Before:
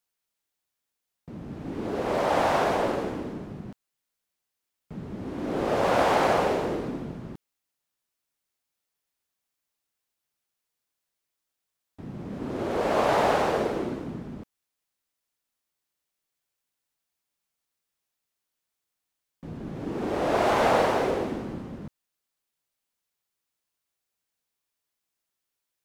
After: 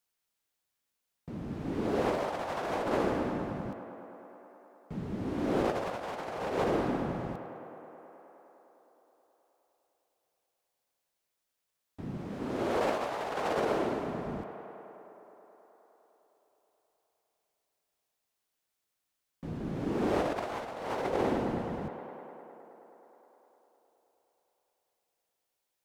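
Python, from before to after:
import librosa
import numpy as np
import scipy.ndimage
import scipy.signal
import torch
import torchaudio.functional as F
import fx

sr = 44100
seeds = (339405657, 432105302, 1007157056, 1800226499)

y = fx.low_shelf(x, sr, hz=290.0, db=-6.0, at=(12.17, 14.26))
y = fx.echo_tape(y, sr, ms=104, feedback_pct=88, wet_db=-13.0, lp_hz=4800.0, drive_db=6.0, wow_cents=31)
y = fx.over_compress(y, sr, threshold_db=-27.0, ratio=-0.5)
y = y * 10.0 ** (-3.0 / 20.0)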